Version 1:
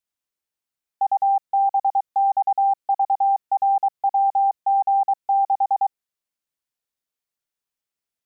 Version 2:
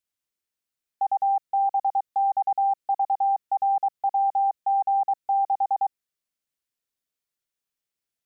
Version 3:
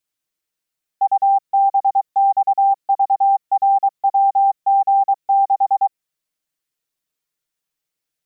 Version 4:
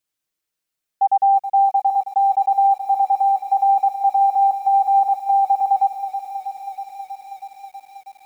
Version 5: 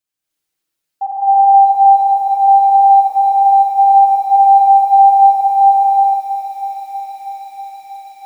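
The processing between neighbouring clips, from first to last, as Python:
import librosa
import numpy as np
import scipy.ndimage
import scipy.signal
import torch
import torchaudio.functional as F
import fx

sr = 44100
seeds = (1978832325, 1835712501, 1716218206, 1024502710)

y1 = fx.peak_eq(x, sr, hz=880.0, db=-4.0, octaves=1.0)
y2 = y1 + 0.65 * np.pad(y1, (int(6.4 * sr / 1000.0), 0))[:len(y1)]
y2 = y2 * librosa.db_to_amplitude(3.5)
y3 = fx.echo_crushed(y2, sr, ms=321, feedback_pct=80, bits=8, wet_db=-10.5)
y4 = fx.rev_gated(y3, sr, seeds[0], gate_ms=350, shape='rising', drr_db=-7.5)
y4 = y4 * librosa.db_to_amplitude(-3.5)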